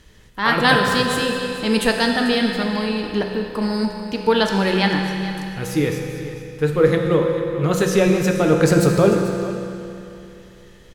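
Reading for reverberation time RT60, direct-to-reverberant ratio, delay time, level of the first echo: 2.9 s, 1.5 dB, 441 ms, -14.5 dB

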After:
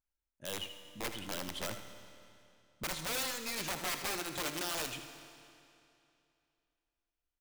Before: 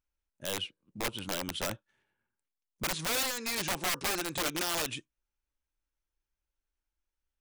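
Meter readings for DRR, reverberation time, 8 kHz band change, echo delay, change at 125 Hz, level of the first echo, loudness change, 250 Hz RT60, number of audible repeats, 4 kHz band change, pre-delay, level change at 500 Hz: 7.0 dB, 2.7 s, -4.5 dB, 79 ms, -5.0 dB, -11.5 dB, -5.0 dB, 2.7 s, 1, -4.5 dB, 27 ms, -4.5 dB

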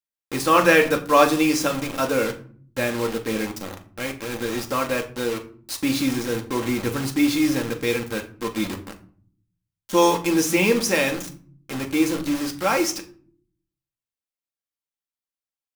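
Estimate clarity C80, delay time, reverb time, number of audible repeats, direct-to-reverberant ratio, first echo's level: 17.5 dB, no echo, 0.50 s, no echo, 3.0 dB, no echo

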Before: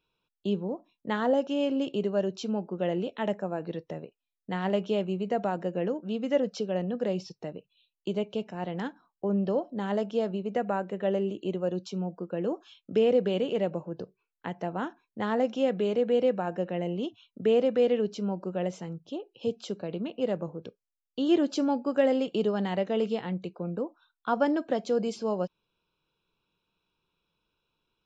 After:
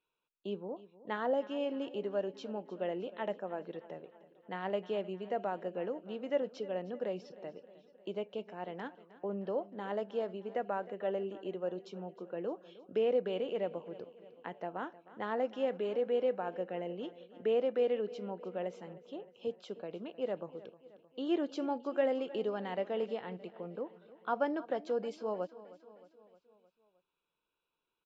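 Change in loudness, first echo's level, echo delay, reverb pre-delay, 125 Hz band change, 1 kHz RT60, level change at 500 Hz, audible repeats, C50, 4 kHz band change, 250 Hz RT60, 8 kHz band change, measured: -7.5 dB, -18.0 dB, 310 ms, no reverb, -14.0 dB, no reverb, -6.5 dB, 4, no reverb, -9.0 dB, no reverb, no reading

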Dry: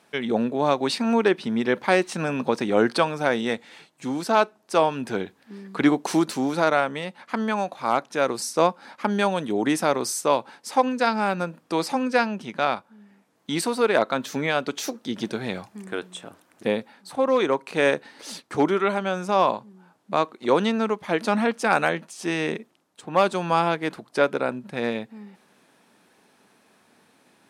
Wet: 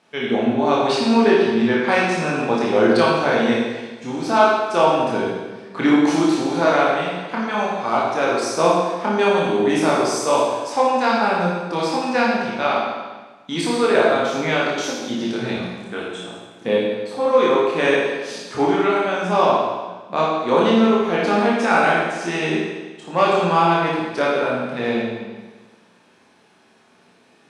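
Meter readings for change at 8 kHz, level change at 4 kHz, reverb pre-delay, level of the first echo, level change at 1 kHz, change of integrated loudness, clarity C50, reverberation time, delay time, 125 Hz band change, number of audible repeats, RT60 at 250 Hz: +1.5 dB, +5.0 dB, 17 ms, no echo, +5.5 dB, +5.0 dB, -1.0 dB, 1.3 s, no echo, +5.0 dB, no echo, 1.3 s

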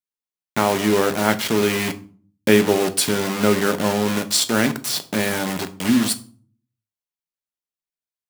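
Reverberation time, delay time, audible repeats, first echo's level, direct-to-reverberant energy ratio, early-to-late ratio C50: 0.45 s, no echo, no echo, no echo, 9.0 dB, 17.0 dB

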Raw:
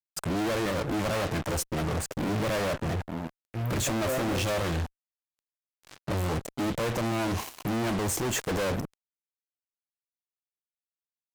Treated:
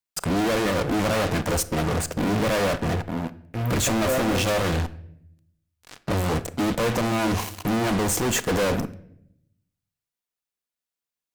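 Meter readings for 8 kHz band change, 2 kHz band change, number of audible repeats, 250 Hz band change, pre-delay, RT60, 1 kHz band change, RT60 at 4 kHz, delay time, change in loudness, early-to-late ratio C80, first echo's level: +5.5 dB, +6.0 dB, no echo, +6.0 dB, 4 ms, 0.70 s, +6.0 dB, 0.55 s, no echo, +5.5 dB, 19.5 dB, no echo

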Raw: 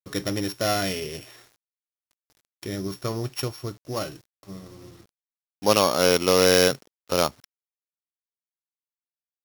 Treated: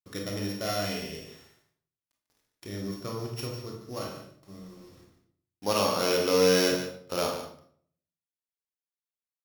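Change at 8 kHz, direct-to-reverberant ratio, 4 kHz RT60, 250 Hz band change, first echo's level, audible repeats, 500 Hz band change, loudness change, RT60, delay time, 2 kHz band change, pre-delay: -6.5 dB, -0.5 dB, 0.50 s, -4.0 dB, -10.0 dB, 1, -4.5 dB, -5.5 dB, 0.60 s, 146 ms, -6.0 dB, 23 ms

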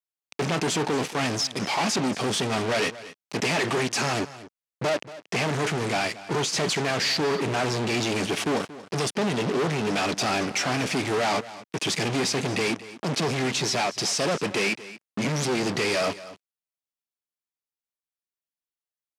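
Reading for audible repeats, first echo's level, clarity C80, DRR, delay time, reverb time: 1, -16.5 dB, no reverb, no reverb, 231 ms, no reverb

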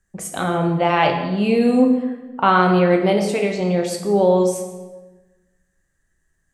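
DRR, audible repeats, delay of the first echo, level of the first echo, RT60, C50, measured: 2.5 dB, no echo, no echo, no echo, 1.2 s, 6.0 dB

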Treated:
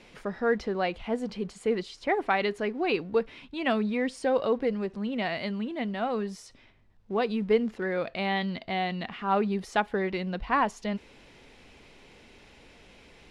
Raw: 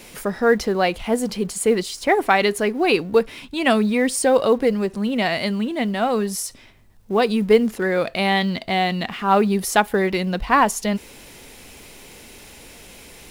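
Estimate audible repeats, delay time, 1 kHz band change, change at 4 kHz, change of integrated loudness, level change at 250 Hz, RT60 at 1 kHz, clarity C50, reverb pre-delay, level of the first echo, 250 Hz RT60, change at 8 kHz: no echo, no echo, -9.0 dB, -11.0 dB, -9.0 dB, -9.0 dB, no reverb, no reverb, no reverb, no echo, no reverb, under -20 dB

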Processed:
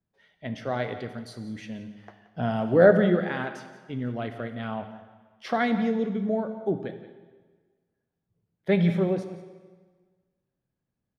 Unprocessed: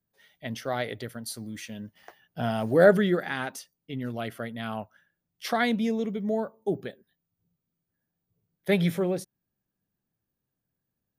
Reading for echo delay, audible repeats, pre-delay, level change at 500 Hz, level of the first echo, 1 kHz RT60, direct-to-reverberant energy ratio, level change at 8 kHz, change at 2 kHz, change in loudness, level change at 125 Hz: 176 ms, 1, 14 ms, +1.5 dB, -15.5 dB, 1.5 s, 7.5 dB, under -10 dB, -1.0 dB, +1.5 dB, +3.0 dB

